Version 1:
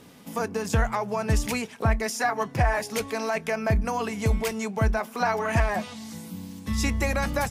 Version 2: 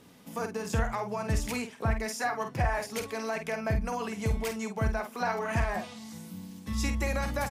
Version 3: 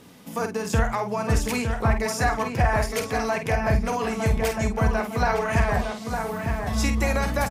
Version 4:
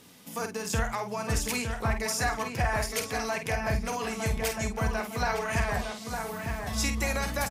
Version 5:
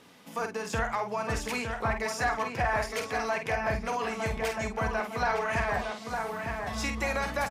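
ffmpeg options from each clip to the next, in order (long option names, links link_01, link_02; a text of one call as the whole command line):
ffmpeg -i in.wav -filter_complex "[0:a]asplit=2[link_01][link_02];[link_02]adelay=49,volume=-7.5dB[link_03];[link_01][link_03]amix=inputs=2:normalize=0,volume=-6dB" out.wav
ffmpeg -i in.wav -filter_complex "[0:a]asplit=2[link_01][link_02];[link_02]adelay=908,lowpass=frequency=2400:poles=1,volume=-5dB,asplit=2[link_03][link_04];[link_04]adelay=908,lowpass=frequency=2400:poles=1,volume=0.43,asplit=2[link_05][link_06];[link_06]adelay=908,lowpass=frequency=2400:poles=1,volume=0.43,asplit=2[link_07][link_08];[link_08]adelay=908,lowpass=frequency=2400:poles=1,volume=0.43,asplit=2[link_09][link_10];[link_10]adelay=908,lowpass=frequency=2400:poles=1,volume=0.43[link_11];[link_01][link_03][link_05][link_07][link_09][link_11]amix=inputs=6:normalize=0,volume=6.5dB" out.wav
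ffmpeg -i in.wav -af "highshelf=frequency=2100:gain=9,volume=-7.5dB" out.wav
ffmpeg -i in.wav -filter_complex "[0:a]asplit=2[link_01][link_02];[link_02]highpass=frequency=720:poles=1,volume=10dB,asoftclip=type=tanh:threshold=-14dB[link_03];[link_01][link_03]amix=inputs=2:normalize=0,lowpass=frequency=1500:poles=1,volume=-6dB" out.wav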